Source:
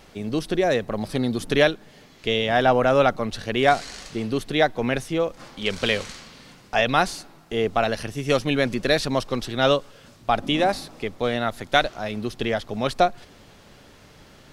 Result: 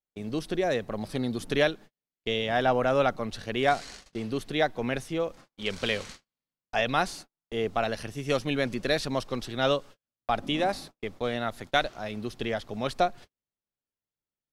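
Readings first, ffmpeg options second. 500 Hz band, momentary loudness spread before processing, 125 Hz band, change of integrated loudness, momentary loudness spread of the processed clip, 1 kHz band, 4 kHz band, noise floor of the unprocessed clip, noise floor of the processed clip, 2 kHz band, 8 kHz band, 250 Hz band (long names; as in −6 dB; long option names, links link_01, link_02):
−6.0 dB, 10 LU, −6.0 dB, −6.0 dB, 9 LU, −6.0 dB, −6.0 dB, −51 dBFS, below −85 dBFS, −6.0 dB, −6.0 dB, −6.0 dB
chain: -af "agate=range=-44dB:threshold=-37dB:ratio=16:detection=peak,volume=-6dB"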